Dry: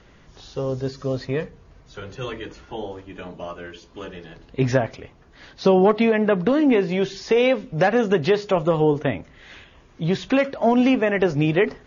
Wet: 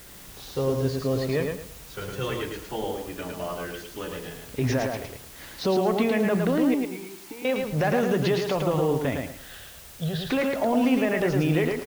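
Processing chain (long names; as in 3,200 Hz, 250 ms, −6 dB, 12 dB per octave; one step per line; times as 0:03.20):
brickwall limiter −16.5 dBFS, peak gain reduction 10.5 dB
0:06.74–0:07.45: formant filter u
0:09.15–0:10.27: phaser with its sweep stopped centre 1,500 Hz, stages 8
bit-depth reduction 8 bits, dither triangular
repeating echo 109 ms, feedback 27%, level −4 dB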